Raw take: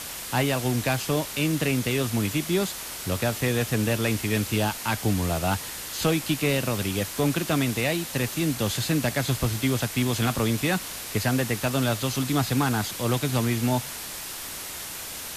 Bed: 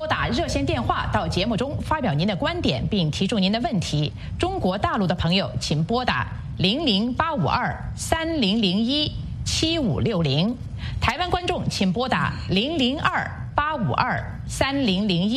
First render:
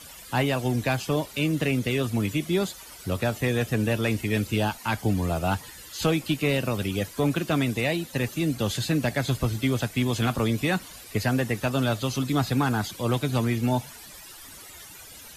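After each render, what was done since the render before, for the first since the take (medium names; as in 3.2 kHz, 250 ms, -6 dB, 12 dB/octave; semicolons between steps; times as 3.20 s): noise reduction 14 dB, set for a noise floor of -36 dBFS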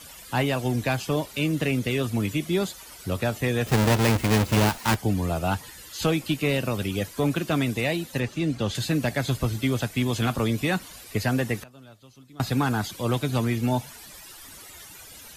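3.66–4.96 s: square wave that keeps the level; 8.20–8.75 s: distance through air 65 m; 11.63–12.40 s: inverted gate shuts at -30 dBFS, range -24 dB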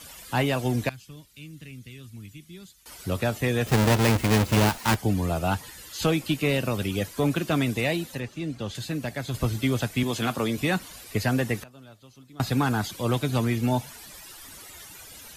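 0.89–2.86 s: amplifier tone stack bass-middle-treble 6-0-2; 8.15–9.34 s: gain -6 dB; 10.03–10.58 s: Bessel high-pass 180 Hz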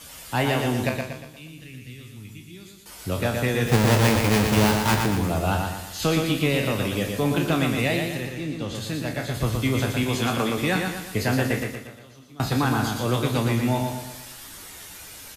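spectral sustain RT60 0.33 s; on a send: feedback delay 118 ms, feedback 46%, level -4.5 dB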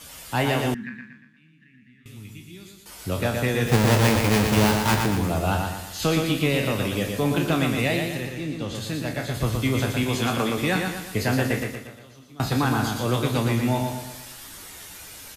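0.74–2.06 s: two resonant band-passes 610 Hz, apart 3 oct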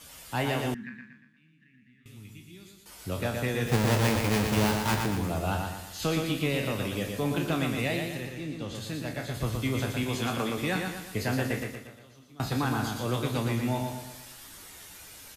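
trim -6 dB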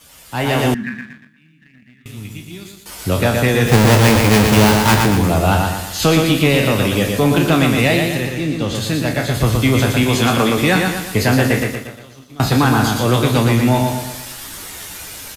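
waveshaping leveller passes 1; level rider gain up to 12.5 dB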